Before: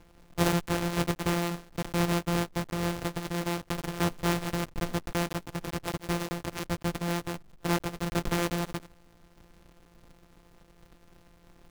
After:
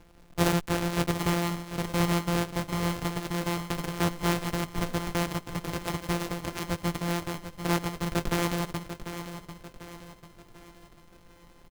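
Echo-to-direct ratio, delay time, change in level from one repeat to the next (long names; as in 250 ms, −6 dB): −9.5 dB, 744 ms, −7.0 dB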